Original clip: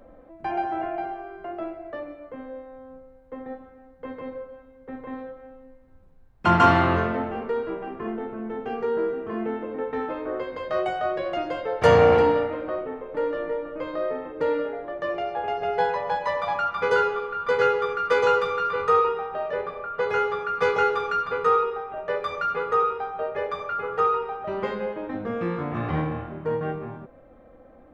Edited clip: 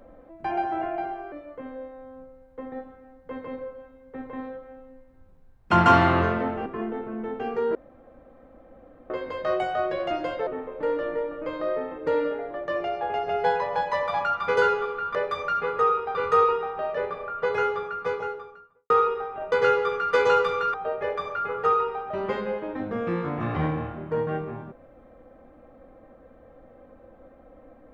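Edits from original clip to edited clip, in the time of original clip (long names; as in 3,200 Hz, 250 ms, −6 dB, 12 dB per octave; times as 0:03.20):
0:01.32–0:02.06: remove
0:07.40–0:07.92: remove
0:09.01–0:10.36: fill with room tone
0:11.73–0:12.81: remove
0:17.49–0:18.71: swap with 0:22.08–0:23.08
0:19.93–0:21.46: fade out and dull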